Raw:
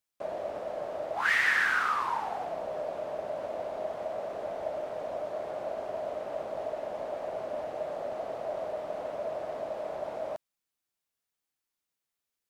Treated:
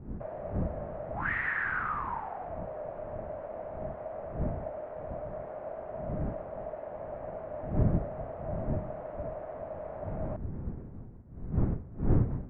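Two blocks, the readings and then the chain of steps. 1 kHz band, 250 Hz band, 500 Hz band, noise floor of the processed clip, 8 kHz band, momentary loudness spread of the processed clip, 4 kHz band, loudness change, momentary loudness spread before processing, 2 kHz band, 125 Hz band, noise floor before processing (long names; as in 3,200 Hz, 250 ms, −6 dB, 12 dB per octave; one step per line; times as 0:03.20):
−4.5 dB, +11.5 dB, −4.0 dB, −44 dBFS, can't be measured, 11 LU, below −20 dB, −2.5 dB, 10 LU, −6.0 dB, +23.0 dB, below −85 dBFS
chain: wind on the microphone 160 Hz −31 dBFS
low-pass filter 2,000 Hz 24 dB per octave
level −4.5 dB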